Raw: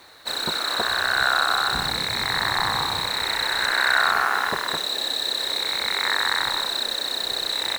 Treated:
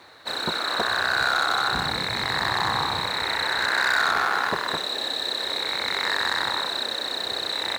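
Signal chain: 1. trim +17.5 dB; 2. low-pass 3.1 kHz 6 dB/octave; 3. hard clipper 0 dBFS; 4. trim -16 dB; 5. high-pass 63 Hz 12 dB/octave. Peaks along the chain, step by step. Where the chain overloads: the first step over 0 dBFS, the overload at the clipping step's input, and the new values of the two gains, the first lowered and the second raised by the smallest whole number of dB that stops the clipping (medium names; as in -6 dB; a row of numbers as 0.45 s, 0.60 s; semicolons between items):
+11.0 dBFS, +10.0 dBFS, 0.0 dBFS, -16.0 dBFS, -14.0 dBFS; step 1, 10.0 dB; step 1 +7.5 dB, step 4 -6 dB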